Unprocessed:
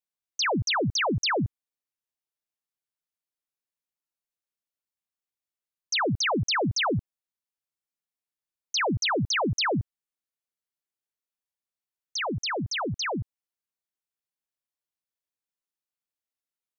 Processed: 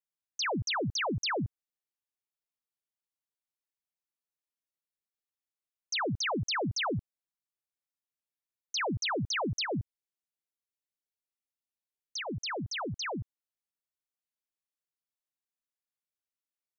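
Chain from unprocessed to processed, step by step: 9.61–12.41 bell 1200 Hz -9.5 dB 0.66 oct; gain -6 dB

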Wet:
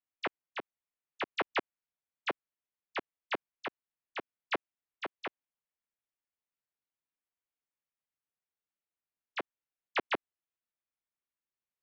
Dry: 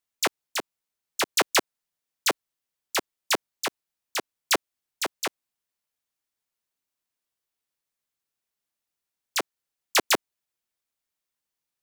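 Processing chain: LPF 2900 Hz 24 dB/oct; gain -8.5 dB

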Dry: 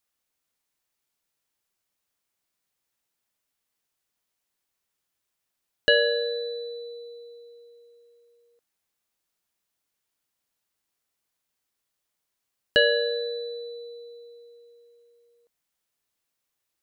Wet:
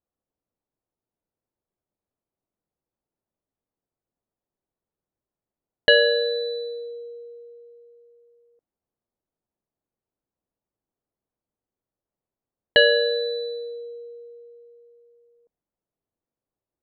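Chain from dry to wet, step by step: low-pass opened by the level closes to 600 Hz, open at -26.5 dBFS; gain +4 dB

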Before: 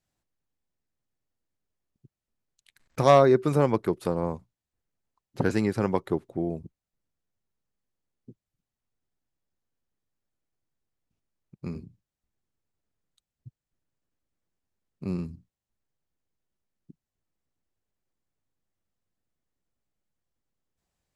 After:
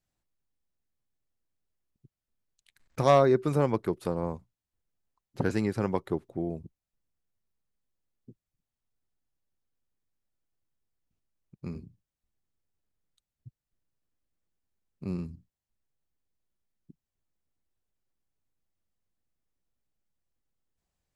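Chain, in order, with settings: low shelf 64 Hz +6 dB; gain -3.5 dB

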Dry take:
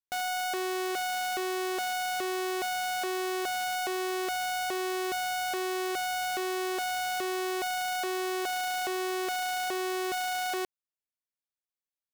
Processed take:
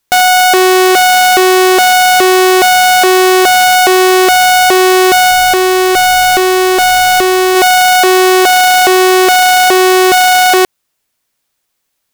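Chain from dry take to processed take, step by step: 5.31–7.55 low shelf 99 Hz +11.5 dB; maximiser +28 dB; gain -1 dB

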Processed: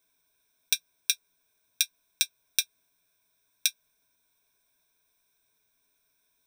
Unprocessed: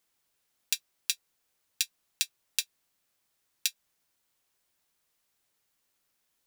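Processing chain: ripple EQ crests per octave 1.6, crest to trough 16 dB

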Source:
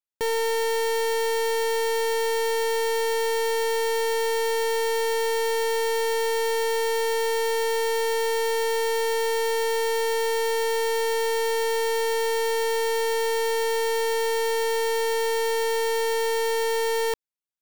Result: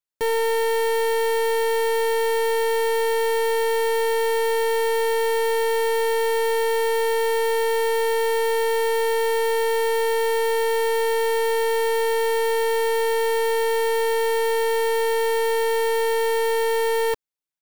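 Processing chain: comb 6.7 ms, depth 47%

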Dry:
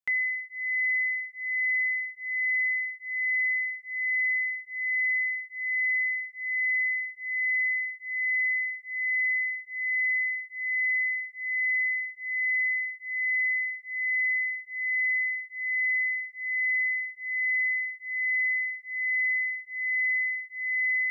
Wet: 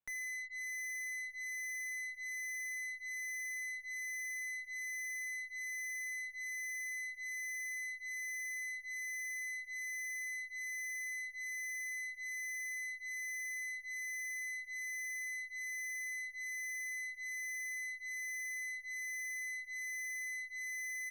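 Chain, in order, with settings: LPF 1900 Hz; tube stage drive 44 dB, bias 0.3; echo 0.545 s -22 dB; gain +3 dB

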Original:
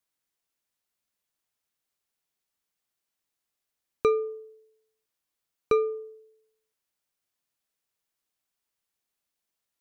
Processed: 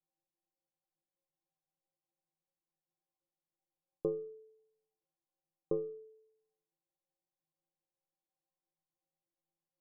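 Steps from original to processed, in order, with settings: elliptic low-pass 940 Hz, stop band 40 dB; metallic resonator 160 Hz, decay 0.4 s, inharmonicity 0.03; gain +12.5 dB

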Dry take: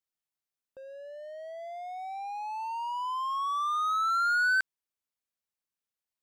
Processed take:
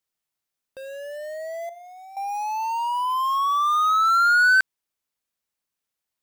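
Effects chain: in parallel at -10 dB: bit-crush 7-bit; 1.69–2.17 on the sum: resonator 340 Hz, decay 0.44 s, harmonics all, mix 80%; gain +6.5 dB

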